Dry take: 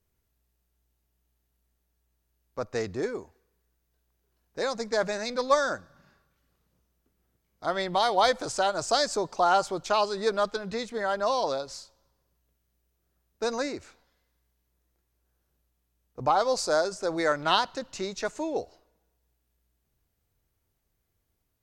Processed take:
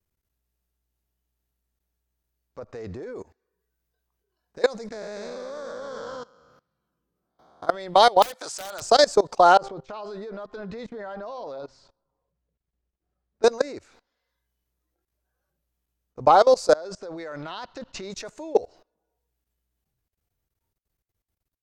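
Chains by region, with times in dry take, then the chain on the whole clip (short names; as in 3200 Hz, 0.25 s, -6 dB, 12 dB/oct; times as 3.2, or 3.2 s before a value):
2.59–3.16 high shelf 3600 Hz -9.5 dB + compressor, threshold -30 dBFS
4.92–7.67 time blur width 0.298 s + echoes that change speed 0.243 s, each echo -1 st, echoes 2, each echo -6 dB
8.22–8.82 HPF 1400 Hz 6 dB/oct + wrapped overs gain 23 dB
9.57–13.43 de-hum 131.3 Hz, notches 16 + compressor 4:1, threshold -32 dBFS + tape spacing loss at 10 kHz 22 dB
16.73–18.1 LPF 5000 Hz + compressor 5:1, threshold -32 dBFS
whole clip: dynamic EQ 500 Hz, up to +6 dB, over -39 dBFS, Q 1.7; spectral noise reduction 11 dB; level quantiser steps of 22 dB; gain +8.5 dB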